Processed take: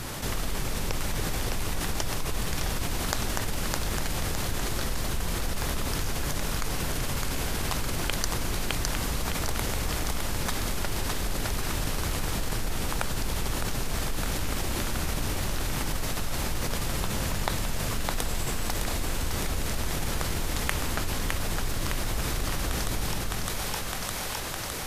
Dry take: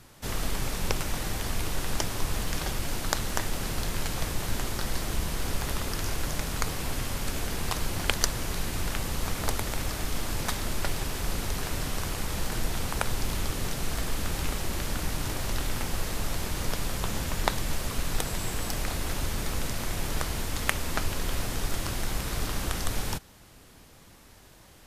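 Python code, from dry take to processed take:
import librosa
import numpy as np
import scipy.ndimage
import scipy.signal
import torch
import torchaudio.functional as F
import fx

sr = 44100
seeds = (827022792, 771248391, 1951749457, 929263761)

p1 = x + fx.echo_split(x, sr, split_hz=460.0, low_ms=285, high_ms=610, feedback_pct=52, wet_db=-5, dry=0)
p2 = fx.env_flatten(p1, sr, amount_pct=70)
y = p2 * 10.0 ** (-7.0 / 20.0)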